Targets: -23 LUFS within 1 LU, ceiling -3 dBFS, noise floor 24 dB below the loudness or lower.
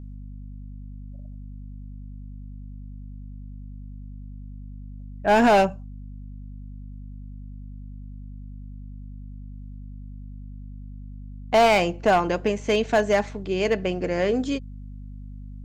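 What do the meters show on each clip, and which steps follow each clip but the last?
clipped samples 0.4%; clipping level -12.5 dBFS; hum 50 Hz; highest harmonic 250 Hz; hum level -36 dBFS; loudness -22.0 LUFS; peak level -12.5 dBFS; loudness target -23.0 LUFS
-> clip repair -12.5 dBFS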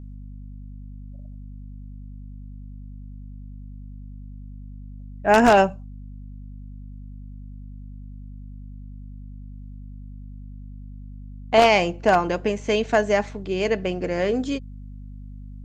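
clipped samples 0.0%; hum 50 Hz; highest harmonic 250 Hz; hum level -36 dBFS
-> de-hum 50 Hz, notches 5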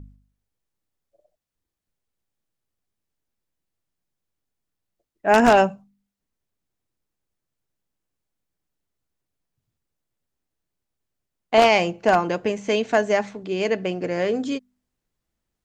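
hum not found; loudness -20.5 LUFS; peak level -3.0 dBFS; loudness target -23.0 LUFS
-> trim -2.5 dB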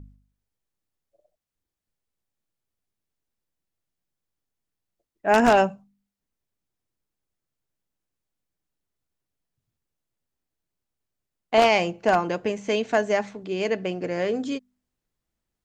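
loudness -23.0 LUFS; peak level -5.5 dBFS; noise floor -85 dBFS

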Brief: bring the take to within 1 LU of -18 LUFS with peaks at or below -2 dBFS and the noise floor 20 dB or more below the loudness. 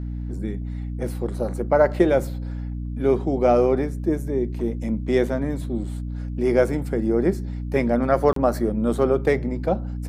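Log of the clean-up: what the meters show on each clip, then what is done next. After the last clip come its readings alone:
dropouts 1; longest dropout 33 ms; hum 60 Hz; highest harmonic 300 Hz; hum level -26 dBFS; loudness -23.0 LUFS; peak level -5.5 dBFS; loudness target -18.0 LUFS
-> interpolate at 8.33 s, 33 ms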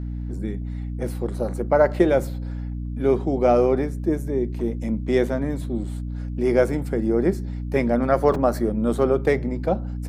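dropouts 0; hum 60 Hz; highest harmonic 300 Hz; hum level -26 dBFS
-> de-hum 60 Hz, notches 5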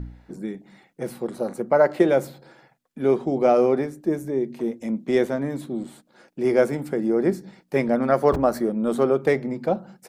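hum not found; loudness -23.0 LUFS; peak level -5.5 dBFS; loudness target -18.0 LUFS
-> trim +5 dB; peak limiter -2 dBFS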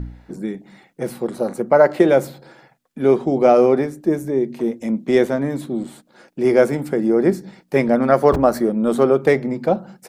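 loudness -18.0 LUFS; peak level -2.0 dBFS; noise floor -59 dBFS

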